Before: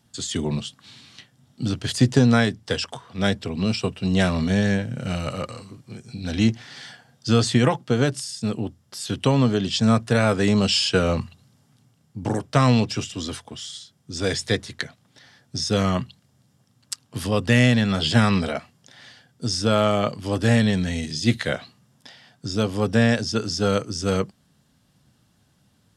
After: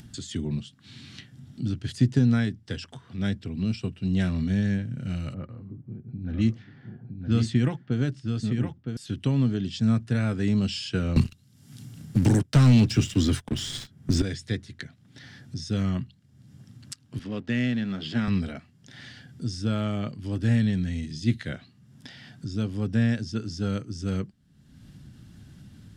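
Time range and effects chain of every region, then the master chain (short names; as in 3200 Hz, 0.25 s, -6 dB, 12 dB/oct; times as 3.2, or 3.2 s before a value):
5.34–8.97 low-pass opened by the level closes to 550 Hz, open at -15 dBFS + echo 0.964 s -6 dB
11.16–14.22 high shelf 9100 Hz +10 dB + sample leveller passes 3 + three-band squash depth 70%
17.19–18.28 backlash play -30.5 dBFS + BPF 200–5900 Hz
whole clip: tilt -2 dB/oct; upward compressor, threshold -23 dBFS; band shelf 720 Hz -8.5 dB; gain -8.5 dB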